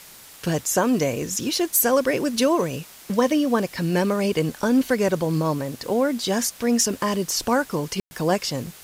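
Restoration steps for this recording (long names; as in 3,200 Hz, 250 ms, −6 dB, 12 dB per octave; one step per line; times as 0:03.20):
click removal
ambience match 0:08.00–0:08.11
broadband denoise 22 dB, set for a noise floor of −45 dBFS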